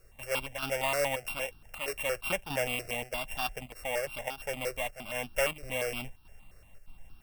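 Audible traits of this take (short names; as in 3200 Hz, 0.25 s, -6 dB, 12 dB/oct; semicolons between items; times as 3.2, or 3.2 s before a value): a buzz of ramps at a fixed pitch in blocks of 16 samples; chopped level 1.6 Hz, depth 60%, duty 85%; a quantiser's noise floor 12-bit, dither triangular; notches that jump at a steady rate 8.6 Hz 880–2000 Hz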